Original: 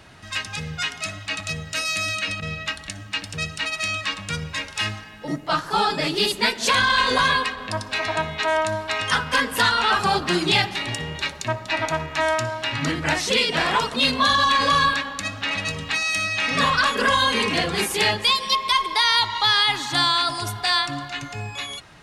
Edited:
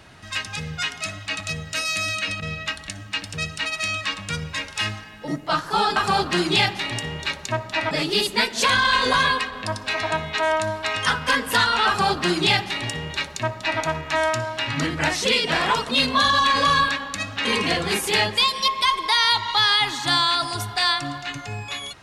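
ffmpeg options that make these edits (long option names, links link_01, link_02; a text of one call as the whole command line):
ffmpeg -i in.wav -filter_complex "[0:a]asplit=4[link_01][link_02][link_03][link_04];[link_01]atrim=end=5.962[link_05];[link_02]atrim=start=9.918:end=11.872[link_06];[link_03]atrim=start=5.958:end=15.502[link_07];[link_04]atrim=start=17.318[link_08];[link_05][link_06]acrossfade=duration=0.004:curve1=hsin:curve2=hsin[link_09];[link_09][link_07]acrossfade=duration=0.004:curve1=hsin:curve2=hsin[link_10];[link_10][link_08]acrossfade=duration=0.004:curve1=hsin:curve2=hsin" out.wav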